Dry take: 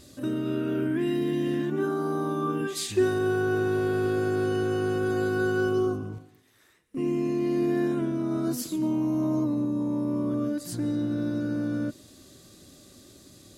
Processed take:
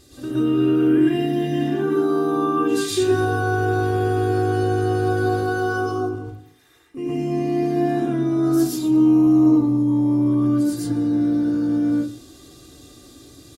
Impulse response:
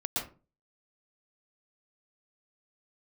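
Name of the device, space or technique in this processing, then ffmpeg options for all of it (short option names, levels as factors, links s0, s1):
microphone above a desk: -filter_complex "[0:a]asettb=1/sr,asplit=3[s0][s1][s2];[s0]atrim=end=5.294[s3];[s1]atrim=start=5.29:end=6.15,asetpts=PTS-STARTPTS,afade=t=in:d=0.004:c=qsin,afade=t=out:st=0.856:d=0.004:c=qsin,lowshelf=f=140:g=-10.5[s4];[s2]atrim=start=6.146[s5];[s3][s4]acrossfade=d=0.004:c1=hsin:c2=qsin[s6];[s6][s5]acrossfade=d=0.004:c1=qsin:c2=hsin,aecho=1:1:2.5:0.51[s7];[1:a]atrim=start_sample=2205[s8];[s7][s8]afir=irnorm=-1:irlink=0"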